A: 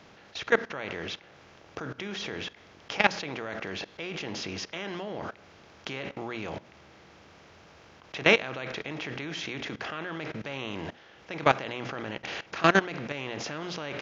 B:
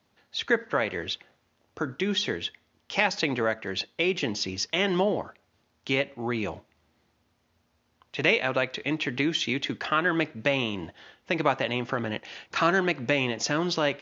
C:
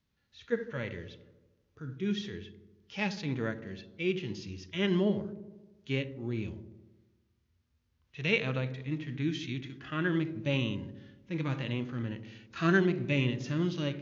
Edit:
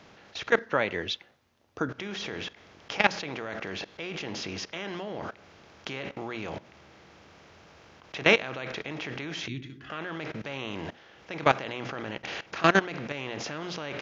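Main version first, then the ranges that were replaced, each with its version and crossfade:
A
0.59–1.89 from B
9.48–9.9 from C

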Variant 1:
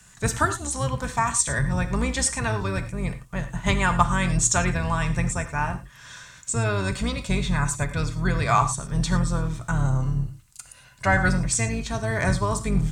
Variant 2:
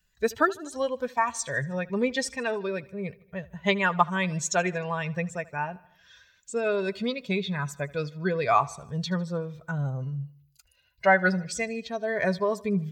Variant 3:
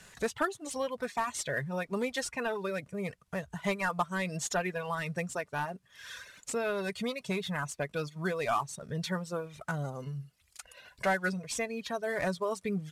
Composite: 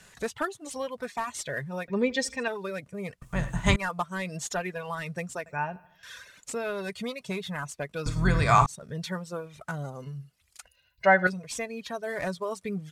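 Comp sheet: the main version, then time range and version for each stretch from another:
3
1.88–2.48 from 2
3.22–3.76 from 1
5.46–6.03 from 2
8.06–8.66 from 1
10.68–11.27 from 2

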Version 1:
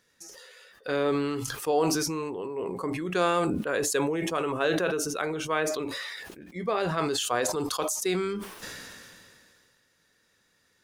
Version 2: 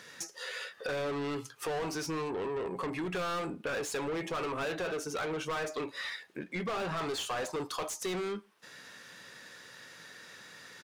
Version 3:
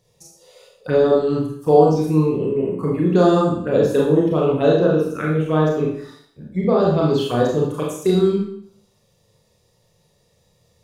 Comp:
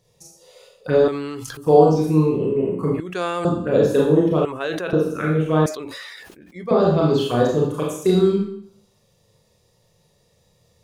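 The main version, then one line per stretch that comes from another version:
3
1.08–1.57 from 1
3–3.45 from 1
4.45–4.93 from 1
5.66–6.71 from 1
not used: 2

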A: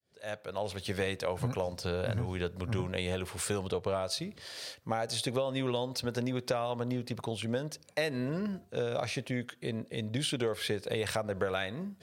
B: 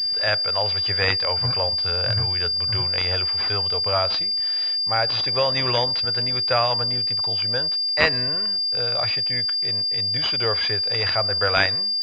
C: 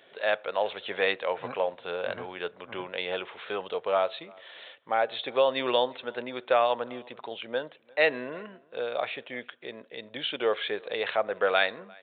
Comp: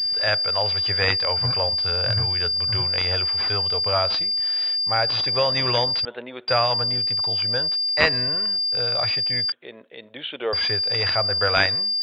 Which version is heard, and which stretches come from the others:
B
6.05–6.48 from C
9.52–10.53 from C
not used: A

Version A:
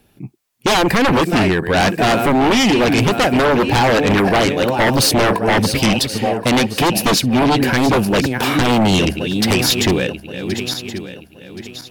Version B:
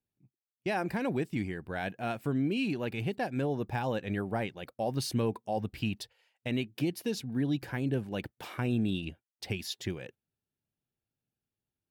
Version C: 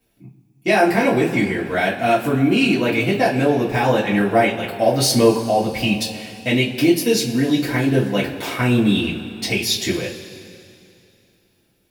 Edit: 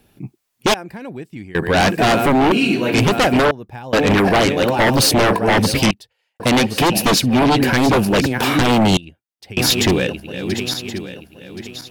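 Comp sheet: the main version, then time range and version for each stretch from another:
A
0.74–1.55 from B
2.52–2.94 from C
3.51–3.93 from B
5.91–6.4 from B
8.97–9.57 from B

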